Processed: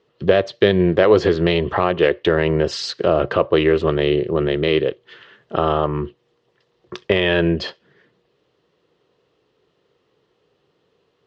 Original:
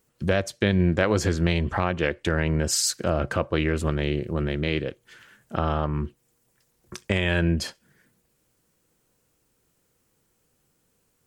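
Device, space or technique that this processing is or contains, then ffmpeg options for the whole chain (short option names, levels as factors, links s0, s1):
overdrive pedal into a guitar cabinet: -filter_complex "[0:a]asplit=2[s0][s1];[s1]highpass=f=720:p=1,volume=2.51,asoftclip=type=tanh:threshold=0.422[s2];[s0][s2]amix=inputs=2:normalize=0,lowpass=f=7200:p=1,volume=0.501,highpass=75,equalizer=f=87:t=q:w=4:g=-4,equalizer=f=230:t=q:w=4:g=-6,equalizer=f=410:t=q:w=4:g=8,equalizer=f=850:t=q:w=4:g=-4,equalizer=f=1500:t=q:w=4:g=-9,equalizer=f=2300:t=q:w=4:g=-9,lowpass=f=3700:w=0.5412,lowpass=f=3700:w=1.3066,volume=2.51"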